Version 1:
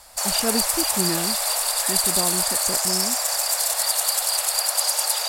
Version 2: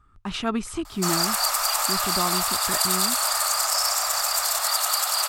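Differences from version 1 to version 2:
background: entry +0.85 s
master: add thirty-one-band graphic EQ 100 Hz +10 dB, 500 Hz −10 dB, 1,250 Hz +12 dB, 10,000 Hz −8 dB

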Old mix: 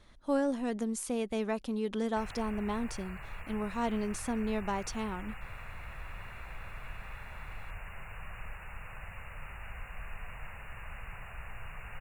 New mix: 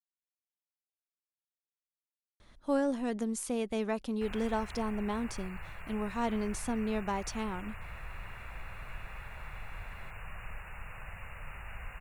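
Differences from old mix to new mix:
speech: entry +2.40 s
background: entry +2.05 s

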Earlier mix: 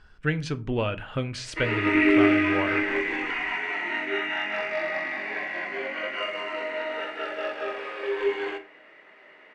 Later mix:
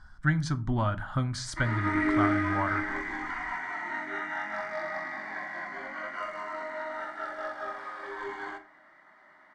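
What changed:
speech +3.5 dB
master: add phaser with its sweep stopped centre 1,100 Hz, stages 4

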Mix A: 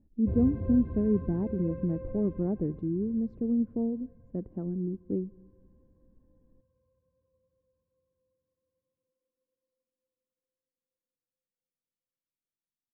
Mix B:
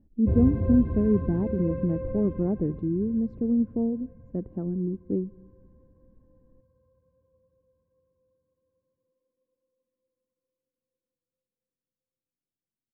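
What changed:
speech +3.5 dB
background +7.5 dB

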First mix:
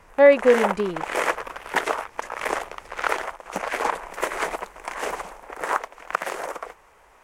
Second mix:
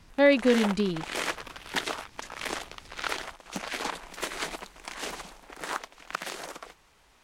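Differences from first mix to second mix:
background −3.5 dB
master: add octave-band graphic EQ 125/250/500/1,000/2,000/4,000 Hz +4/+4/−8/−6/−4/+10 dB

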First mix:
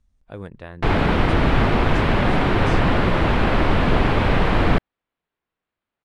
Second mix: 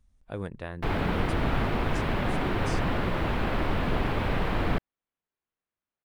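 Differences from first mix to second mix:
background −9.5 dB
master: remove low-pass filter 8,500 Hz 12 dB per octave

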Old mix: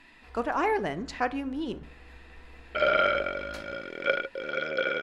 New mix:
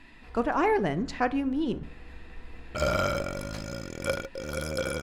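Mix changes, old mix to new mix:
first sound: add parametric band 70 Hz −10.5 dB 0.36 octaves
second sound: remove loudspeaker in its box 190–3,700 Hz, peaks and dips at 410 Hz +7 dB, 610 Hz +5 dB, 1,000 Hz −9 dB, 1,500 Hz +9 dB, 2,100 Hz +8 dB, 3,100 Hz +7 dB
master: add low-shelf EQ 260 Hz +10.5 dB

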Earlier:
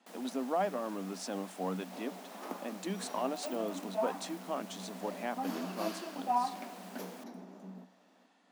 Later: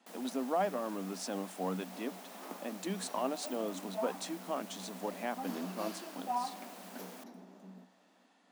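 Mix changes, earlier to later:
second sound −4.5 dB
master: add high-shelf EQ 10,000 Hz +5 dB

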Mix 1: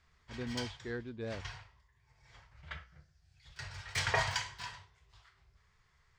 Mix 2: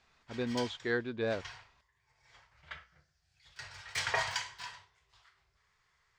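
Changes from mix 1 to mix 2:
speech +11.0 dB
master: add low-shelf EQ 250 Hz −12 dB

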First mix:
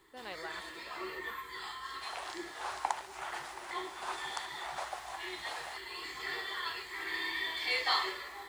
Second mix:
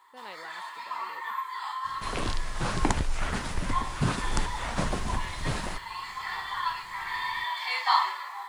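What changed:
first sound: add high-pass with resonance 950 Hz, resonance Q 5.9
second sound: remove four-pole ladder high-pass 690 Hz, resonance 55%

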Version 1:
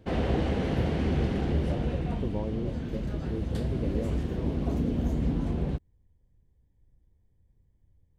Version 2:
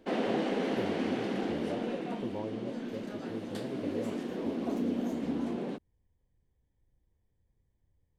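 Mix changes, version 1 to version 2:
speech: add low-shelf EQ 340 Hz −9.5 dB
background: add Butterworth high-pass 210 Hz 36 dB per octave

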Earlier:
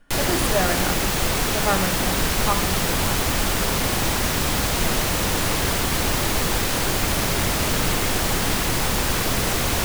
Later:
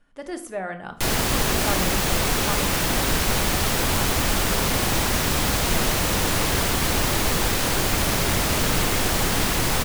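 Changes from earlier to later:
speech −7.0 dB
background: entry +0.90 s

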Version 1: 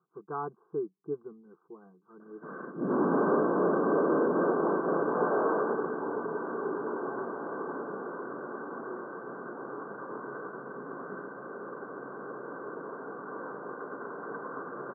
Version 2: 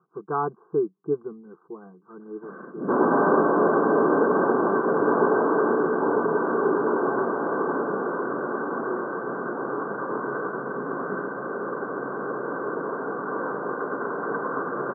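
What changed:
speech +9.5 dB
second sound +11.0 dB

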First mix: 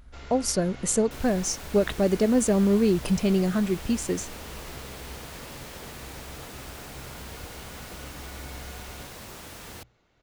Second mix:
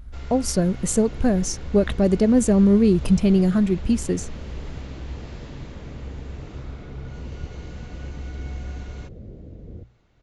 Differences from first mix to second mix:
second sound: add Butterworth low-pass 550 Hz 36 dB per octave
master: add low-shelf EQ 230 Hz +11 dB

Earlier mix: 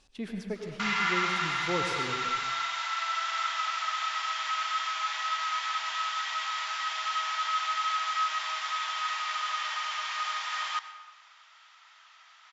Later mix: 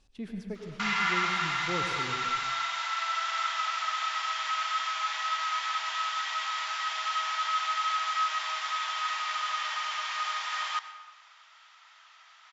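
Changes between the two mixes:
speech −6.5 dB
master: add low-shelf EQ 270 Hz +8.5 dB

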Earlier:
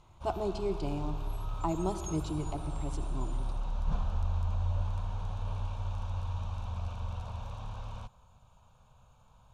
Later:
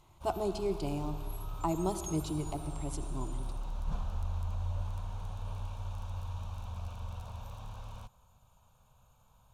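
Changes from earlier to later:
background −4.0 dB
master: remove high-frequency loss of the air 66 metres

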